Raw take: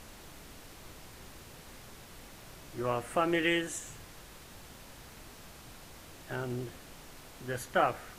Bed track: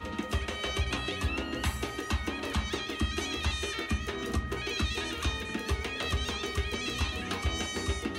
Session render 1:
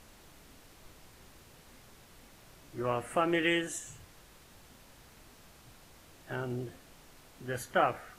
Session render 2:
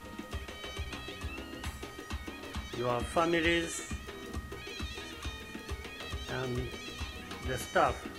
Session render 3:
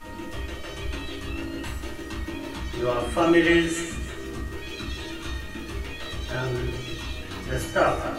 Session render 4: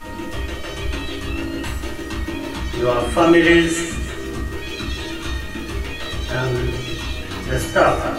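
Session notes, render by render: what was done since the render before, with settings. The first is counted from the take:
noise print and reduce 6 dB
add bed track -9 dB
regenerating reverse delay 0.147 s, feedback 44%, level -10.5 dB; shoebox room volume 130 m³, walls furnished, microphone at 2.6 m
gain +7 dB; limiter -2 dBFS, peak gain reduction 2.5 dB

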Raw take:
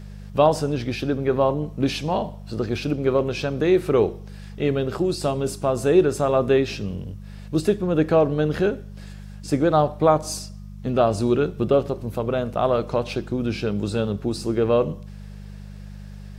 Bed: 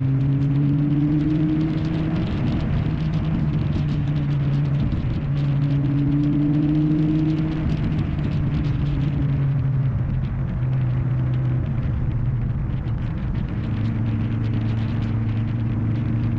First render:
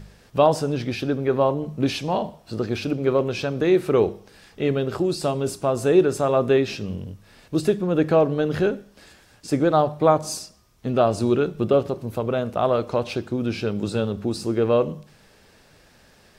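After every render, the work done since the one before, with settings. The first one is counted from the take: de-hum 50 Hz, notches 4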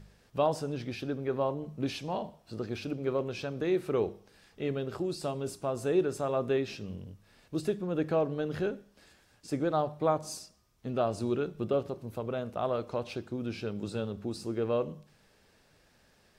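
gain -10.5 dB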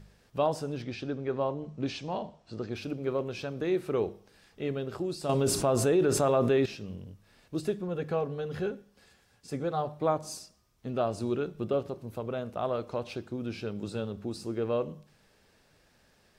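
0.82–2.76 LPF 7600 Hz 24 dB/oct; 5.29–6.66 fast leveller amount 70%; 7.88–9.85 notch comb 310 Hz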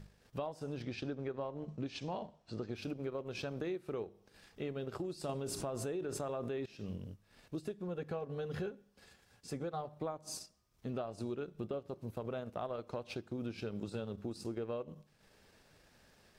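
compressor 16:1, threshold -35 dBFS, peak gain reduction 15 dB; transient shaper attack -2 dB, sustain -8 dB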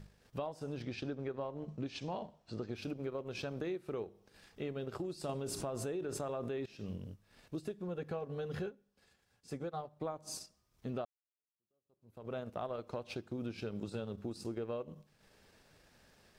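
8.59–10.05 upward expander, over -53 dBFS; 11.05–12.32 fade in exponential

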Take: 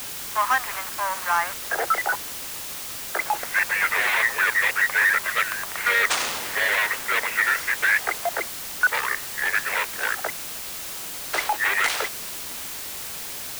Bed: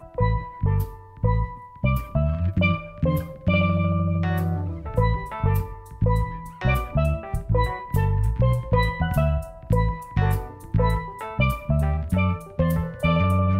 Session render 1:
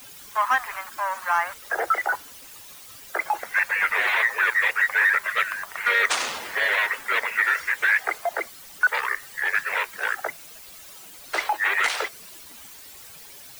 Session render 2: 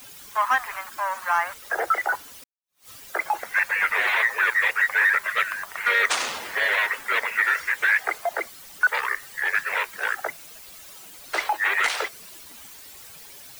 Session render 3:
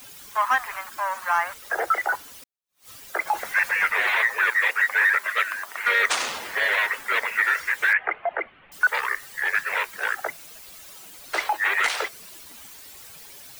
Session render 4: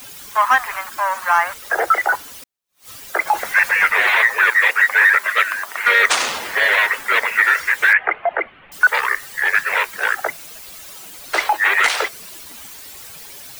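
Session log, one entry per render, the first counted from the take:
denoiser 13 dB, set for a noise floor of -34 dBFS
2.44–2.88 fade in exponential
3.27–3.88 zero-crossing step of -37 dBFS; 4.5–5.85 brick-wall FIR high-pass 190 Hz; 7.93–8.72 steep low-pass 2900 Hz 48 dB/oct
gain +7 dB

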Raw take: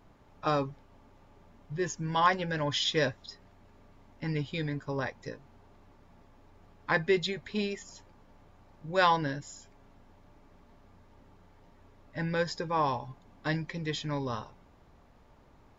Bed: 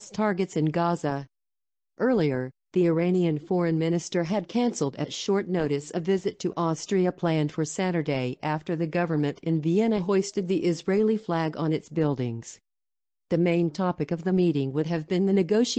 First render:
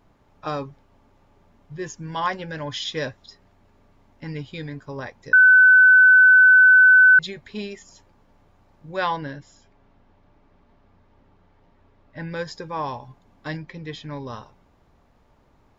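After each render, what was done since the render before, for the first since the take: 5.33–7.19 bleep 1510 Hz -8.5 dBFS; 8.96–12.32 LPF 4400 Hz; 13.57–14.27 air absorption 100 m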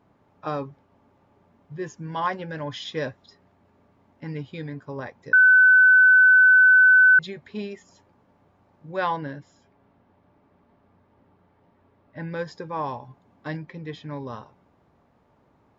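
HPF 100 Hz; high shelf 2900 Hz -10.5 dB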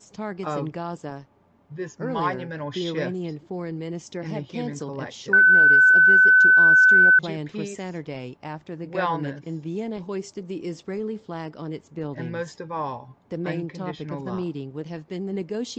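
add bed -7 dB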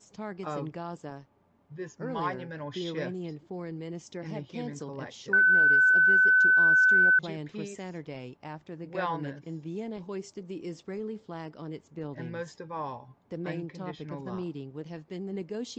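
gain -6.5 dB

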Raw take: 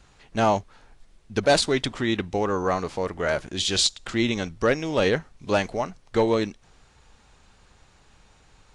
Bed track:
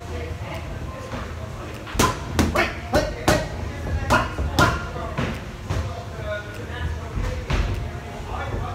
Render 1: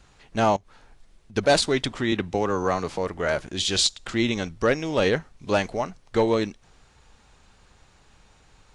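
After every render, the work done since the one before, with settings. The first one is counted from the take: 0.56–1.36 compressor 16:1, threshold -42 dBFS; 2.12–2.98 three-band squash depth 40%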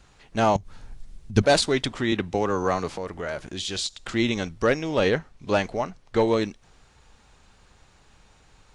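0.55–1.42 tone controls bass +13 dB, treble +5 dB; 2.89–4.03 compressor 2:1, threshold -31 dBFS; 4.79–6.21 high shelf 8300 Hz -8 dB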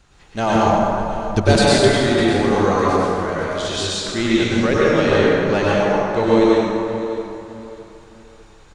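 feedback echo 0.606 s, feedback 28%, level -15 dB; plate-style reverb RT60 2.7 s, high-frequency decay 0.5×, pre-delay 85 ms, DRR -7 dB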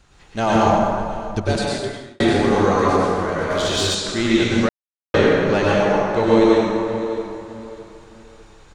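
0.72–2.2 fade out; 3.5–3.95 sample leveller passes 1; 4.69–5.14 mute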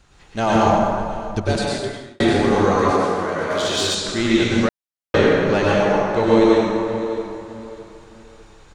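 2.92–3.97 HPF 180 Hz 6 dB/oct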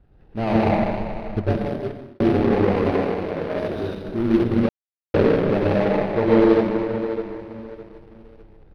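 median filter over 41 samples; running mean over 6 samples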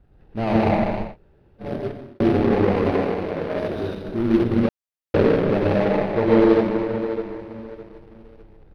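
1.09–1.66 room tone, crossfade 0.16 s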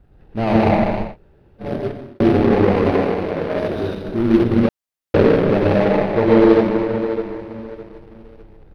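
gain +4 dB; limiter -2 dBFS, peak gain reduction 1.5 dB

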